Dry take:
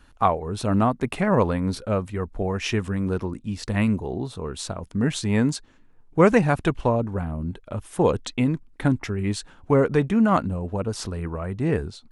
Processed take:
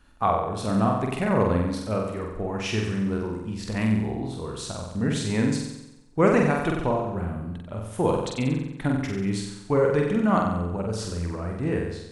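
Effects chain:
flutter between parallel walls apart 7.9 metres, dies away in 0.91 s
level −4.5 dB

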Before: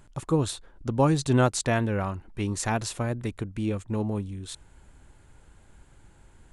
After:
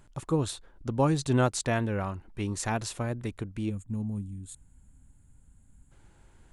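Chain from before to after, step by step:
gain on a spectral selection 0:03.70–0:05.91, 280–6,500 Hz −14 dB
level −3 dB

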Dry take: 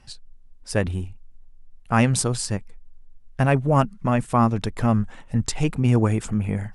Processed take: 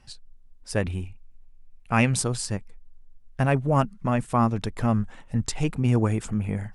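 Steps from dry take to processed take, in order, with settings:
0:00.82–0:02.15: parametric band 2,400 Hz +9 dB 0.34 octaves
level −3 dB

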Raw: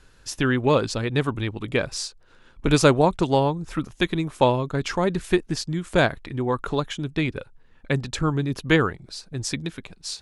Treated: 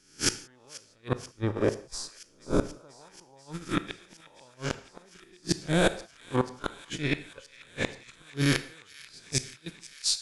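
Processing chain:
peak hold with a rise ahead of every peak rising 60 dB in 0.97 s
parametric band 9,300 Hz +6 dB 2.9 octaves
noise gate −24 dBFS, range −27 dB
0:01.08–0:03.41: high shelf with overshoot 1,600 Hz −14 dB, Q 1.5
gate with flip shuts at −11 dBFS, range −40 dB
delay with a high-pass on its return 485 ms, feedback 83%, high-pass 1,800 Hz, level −18 dB
convolution reverb, pre-delay 18 ms, DRR 12 dB

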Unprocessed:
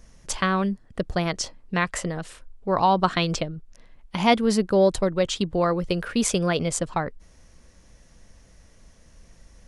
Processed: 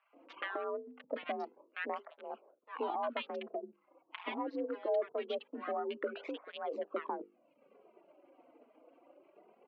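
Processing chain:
adaptive Wiener filter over 25 samples
mains-hum notches 50/100/150/200/250/300/350/400/450 Hz
reverb reduction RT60 0.66 s
transient designer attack −6 dB, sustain +4 dB
downward compressor 6 to 1, threshold −37 dBFS, peak gain reduction 19.5 dB
multiband delay without the direct sound highs, lows 130 ms, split 1,100 Hz
single-sideband voice off tune +51 Hz 280–3,000 Hz
through-zero flanger with one copy inverted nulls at 0.23 Hz, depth 5.6 ms
level +8 dB

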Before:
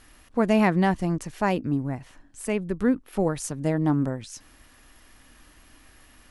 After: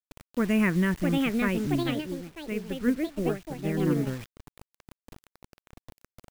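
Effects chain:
parametric band 900 Hz +3.5 dB 0.32 octaves
phaser with its sweep stopped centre 1,900 Hz, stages 4
low-pass that shuts in the quiet parts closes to 360 Hz, open at −22.5 dBFS
high-shelf EQ 3,200 Hz +4 dB
low-pass that shuts in the quiet parts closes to 1,600 Hz, open at −18.5 dBFS
delay with pitch and tempo change per echo 736 ms, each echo +4 semitones, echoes 2
background noise brown −51 dBFS
bit reduction 7 bits
0:01.83–0:04.07: expander for the loud parts 1.5 to 1, over −43 dBFS
level −1.5 dB

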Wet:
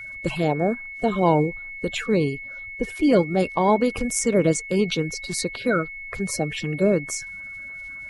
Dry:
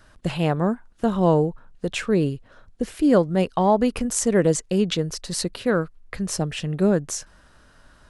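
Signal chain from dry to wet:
spectral magnitudes quantised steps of 30 dB
steady tone 2,200 Hz −34 dBFS

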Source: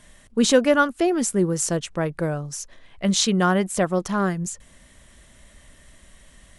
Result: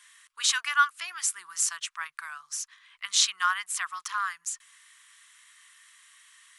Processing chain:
elliptic high-pass filter 1,100 Hz, stop band 50 dB

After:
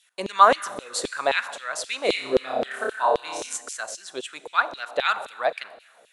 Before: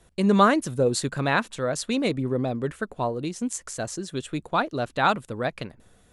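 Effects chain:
0:02.05–0:03.57: flutter between parallel walls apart 5.2 metres, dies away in 0.93 s
four-comb reverb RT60 1.5 s, combs from 31 ms, DRR 14 dB
auto-filter high-pass saw down 3.8 Hz 430–3,500 Hz

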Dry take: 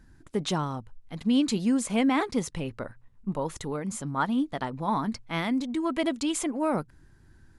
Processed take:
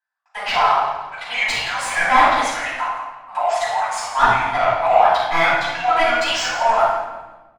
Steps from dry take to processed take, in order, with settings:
pitch shifter gated in a rhythm −5.5 semitones, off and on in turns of 147 ms
noise gate −47 dBFS, range −37 dB
elliptic high-pass filter 690 Hz, stop band 50 dB
mid-hump overdrive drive 22 dB, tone 1,500 Hz, clips at −13 dBFS
on a send: repeating echo 169 ms, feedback 36%, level −13.5 dB
on the sum: rectangular room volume 440 cubic metres, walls mixed, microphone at 8.5 metres
level −5 dB

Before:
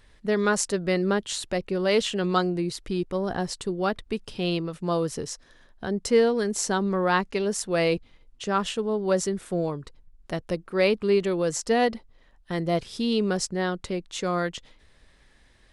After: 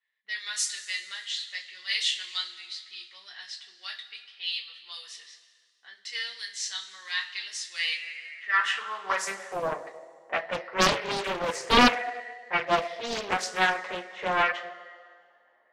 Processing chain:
low-pass that shuts in the quiet parts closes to 730 Hz, open at −20 dBFS
parametric band 1,900 Hz +14 dB 0.5 octaves
coupled-rooms reverb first 0.22 s, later 1.8 s, from −18 dB, DRR −5 dB
high-pass filter sweep 3,700 Hz → 680 Hz, 0:07.74–0:09.63
highs frequency-modulated by the lows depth 0.72 ms
level −8 dB

